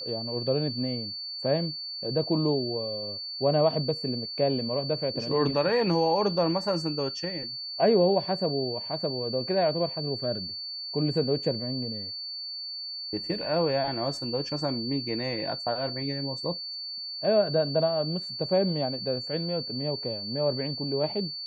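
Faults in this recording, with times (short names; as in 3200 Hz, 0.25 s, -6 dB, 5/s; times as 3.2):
tone 4500 Hz -34 dBFS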